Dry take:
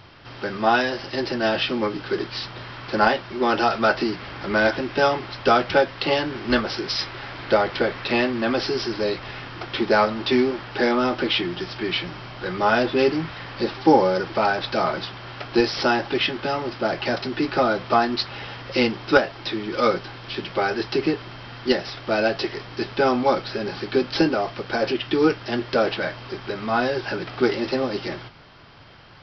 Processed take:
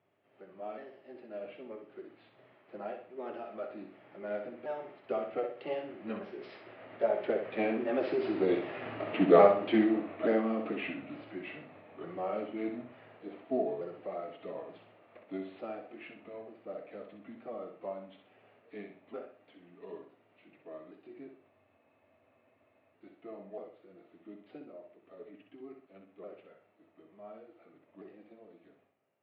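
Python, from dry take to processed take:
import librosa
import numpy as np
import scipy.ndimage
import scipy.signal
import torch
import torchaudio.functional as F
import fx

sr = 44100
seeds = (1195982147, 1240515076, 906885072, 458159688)

y = fx.pitch_ramps(x, sr, semitones=-3.5, every_ms=832)
y = fx.doppler_pass(y, sr, speed_mps=23, closest_m=14.0, pass_at_s=8.96)
y = fx.cabinet(y, sr, low_hz=120.0, low_slope=24, high_hz=2500.0, hz=(130.0, 410.0, 620.0, 1000.0, 1500.0), db=(-8, 5, 9, -6, -7))
y = fx.echo_feedback(y, sr, ms=63, feedback_pct=37, wet_db=-6.5)
y = fx.spec_freeze(y, sr, seeds[0], at_s=21.53, hold_s=1.39)
y = F.gain(torch.from_numpy(y), -3.0).numpy()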